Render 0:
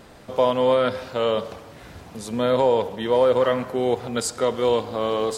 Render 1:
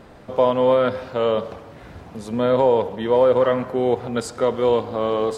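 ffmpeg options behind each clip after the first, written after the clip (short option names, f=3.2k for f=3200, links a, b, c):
-af "highshelf=f=3.2k:g=-11.5,volume=2.5dB"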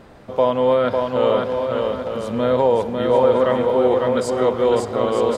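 -af "aecho=1:1:550|907.5|1140|1291|1389:0.631|0.398|0.251|0.158|0.1"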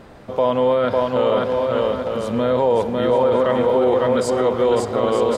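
-af "alimiter=limit=-11dB:level=0:latency=1:release=25,volume=2dB"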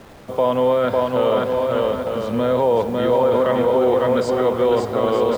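-filter_complex "[0:a]acrossover=split=110|900|1800[a][b][c][d];[b]acrusher=bits=7:mix=0:aa=0.000001[e];[d]lowpass=5.3k[f];[a][e][c][f]amix=inputs=4:normalize=0"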